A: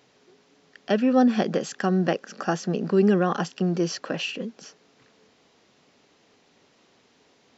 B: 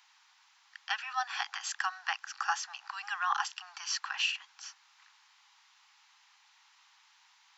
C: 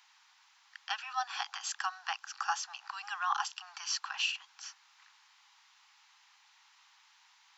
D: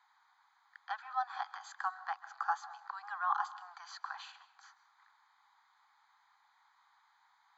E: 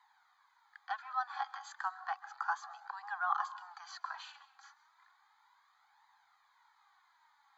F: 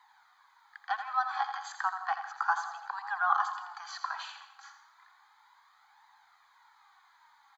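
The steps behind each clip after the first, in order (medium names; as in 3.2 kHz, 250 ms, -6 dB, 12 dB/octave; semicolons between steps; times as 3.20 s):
steep high-pass 820 Hz 96 dB/octave
dynamic bell 1.9 kHz, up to -7 dB, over -50 dBFS, Q 2.3
boxcar filter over 16 samples; on a send at -16 dB: reverberation RT60 0.65 s, pre-delay 133 ms; on the sum: trim +2 dB
flange 0.33 Hz, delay 1 ms, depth 2.8 ms, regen +31%; trim +4 dB
feedback delay 84 ms, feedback 43%, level -9 dB; trim +6 dB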